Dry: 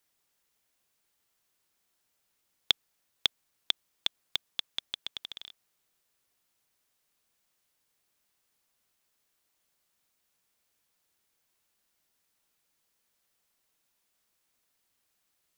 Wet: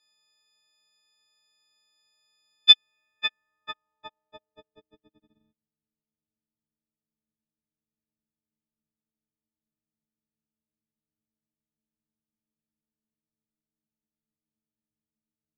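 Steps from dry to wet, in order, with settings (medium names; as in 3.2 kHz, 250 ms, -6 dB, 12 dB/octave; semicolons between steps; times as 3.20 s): partials quantised in pitch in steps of 6 st; low-pass sweep 4.3 kHz -> 230 Hz, 2.52–5.43 s; trim -4 dB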